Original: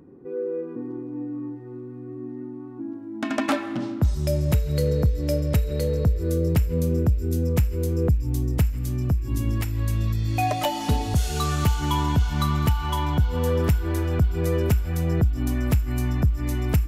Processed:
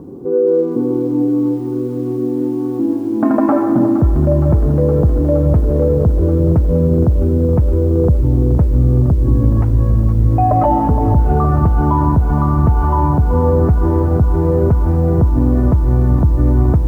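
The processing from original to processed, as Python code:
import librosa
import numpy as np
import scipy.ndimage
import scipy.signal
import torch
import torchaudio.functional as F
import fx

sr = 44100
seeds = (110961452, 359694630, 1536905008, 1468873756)

p1 = scipy.signal.sosfilt(scipy.signal.butter(4, 1100.0, 'lowpass', fs=sr, output='sos'), x)
p2 = fx.over_compress(p1, sr, threshold_db=-28.0, ratio=-1.0)
p3 = p1 + (p2 * 10.0 ** (2.0 / 20.0))
p4 = fx.quant_dither(p3, sr, seeds[0], bits=12, dither='none')
p5 = fx.echo_crushed(p4, sr, ms=466, feedback_pct=80, bits=8, wet_db=-12.5)
y = p5 * 10.0 ** (6.0 / 20.0)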